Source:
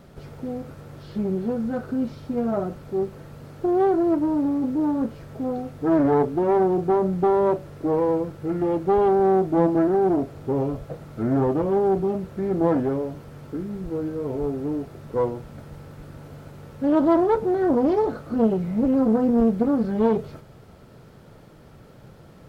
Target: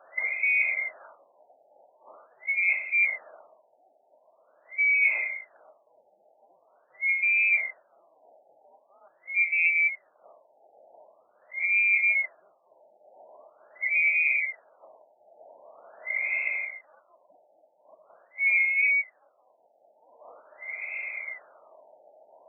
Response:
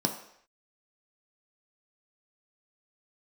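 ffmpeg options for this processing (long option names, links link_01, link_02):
-af "afftfilt=real='real(if(lt(b,920),b+92*(1-2*mod(floor(b/92),2)),b),0)':imag='imag(if(lt(b,920),b+92*(1-2*mod(floor(b/92),2)),b),0)':win_size=2048:overlap=0.75,areverse,acompressor=threshold=-34dB:ratio=8,areverse,crystalizer=i=4.5:c=0,highpass=frequency=620:width_type=q:width=6.6,afftfilt=real='re*lt(b*sr/1024,880*pow(2700/880,0.5+0.5*sin(2*PI*0.44*pts/sr)))':imag='im*lt(b*sr/1024,880*pow(2700/880,0.5+0.5*sin(2*PI*0.44*pts/sr)))':win_size=1024:overlap=0.75,volume=7dB"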